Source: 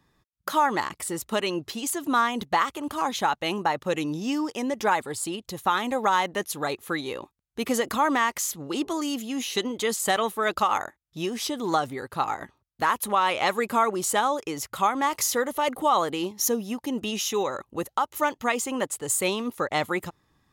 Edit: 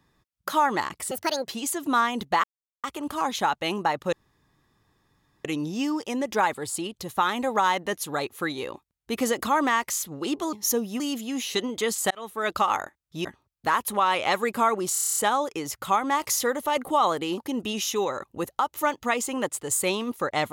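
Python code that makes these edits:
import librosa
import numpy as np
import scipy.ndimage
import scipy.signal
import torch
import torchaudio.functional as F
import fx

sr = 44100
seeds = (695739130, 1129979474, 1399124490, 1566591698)

y = fx.edit(x, sr, fx.speed_span(start_s=1.11, length_s=0.58, speed=1.54),
    fx.insert_silence(at_s=2.64, length_s=0.4),
    fx.insert_room_tone(at_s=3.93, length_s=1.32),
    fx.fade_in_span(start_s=10.12, length_s=0.43),
    fx.cut(start_s=11.26, length_s=1.14),
    fx.stutter(start_s=14.08, slice_s=0.03, count=9),
    fx.move(start_s=16.29, length_s=0.47, to_s=9.01), tone=tone)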